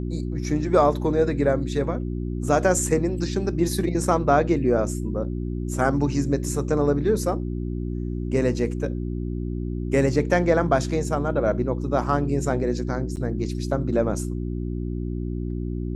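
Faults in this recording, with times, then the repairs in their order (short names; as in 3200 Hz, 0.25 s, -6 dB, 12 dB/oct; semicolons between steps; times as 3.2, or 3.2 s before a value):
hum 60 Hz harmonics 6 -28 dBFS
13.16–13.17 gap 9.3 ms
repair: de-hum 60 Hz, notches 6; interpolate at 13.16, 9.3 ms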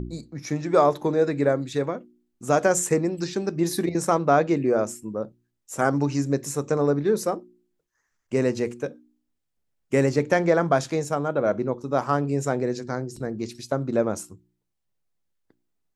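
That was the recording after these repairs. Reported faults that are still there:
none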